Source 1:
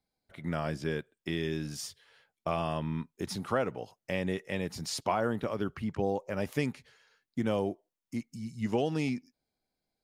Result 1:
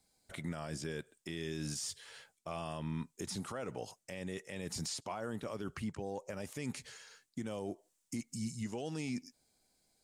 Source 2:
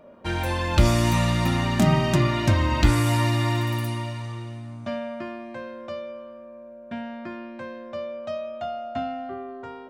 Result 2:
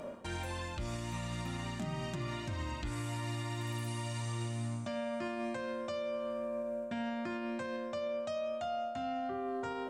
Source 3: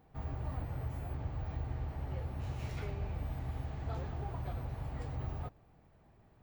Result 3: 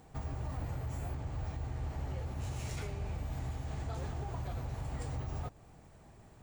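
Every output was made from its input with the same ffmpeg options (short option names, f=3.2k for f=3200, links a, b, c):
-filter_complex "[0:a]acrossover=split=4000[a][b];[b]acompressor=threshold=-46dB:ratio=4:attack=1:release=60[c];[a][c]amix=inputs=2:normalize=0,equalizer=f=7.9k:w=1:g=14.5,areverse,acompressor=threshold=-35dB:ratio=20,areverse,alimiter=level_in=12.5dB:limit=-24dB:level=0:latency=1:release=181,volume=-12.5dB,volume=6.5dB"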